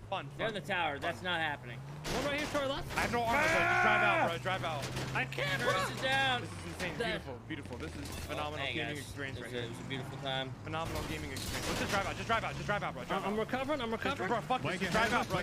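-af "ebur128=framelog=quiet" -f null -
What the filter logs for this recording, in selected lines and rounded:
Integrated loudness:
  I:         -34.0 LUFS
  Threshold: -44.0 LUFS
Loudness range:
  LRA:         7.8 LU
  Threshold: -54.0 LUFS
  LRA low:   -38.6 LUFS
  LRA high:  -30.8 LUFS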